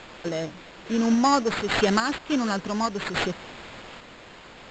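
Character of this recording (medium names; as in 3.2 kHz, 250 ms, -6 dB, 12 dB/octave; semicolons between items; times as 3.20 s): a quantiser's noise floor 8-bit, dither triangular; random-step tremolo; aliases and images of a low sample rate 5.9 kHz, jitter 0%; AAC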